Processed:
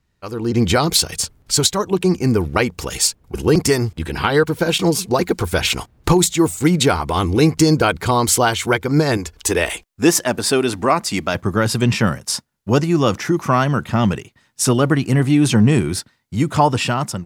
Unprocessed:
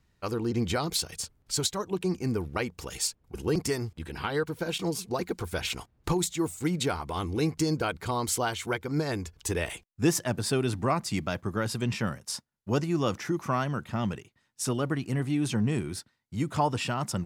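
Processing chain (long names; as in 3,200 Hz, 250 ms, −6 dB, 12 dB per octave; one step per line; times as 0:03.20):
0:09.17–0:11.35: parametric band 120 Hz −13 dB 1.1 octaves
automatic gain control gain up to 15 dB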